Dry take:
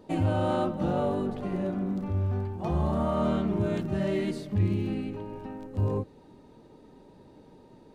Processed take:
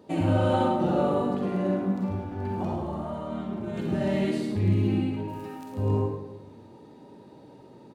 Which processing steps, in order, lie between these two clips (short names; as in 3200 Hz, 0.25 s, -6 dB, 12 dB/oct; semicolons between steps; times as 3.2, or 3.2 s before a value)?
HPF 100 Hz; 2.24–3.78 negative-ratio compressor -35 dBFS, ratio -1; 5.28–5.72 RIAA curve recording; echo 0.107 s -7.5 dB; reverb RT60 0.85 s, pre-delay 40 ms, DRR 0.5 dB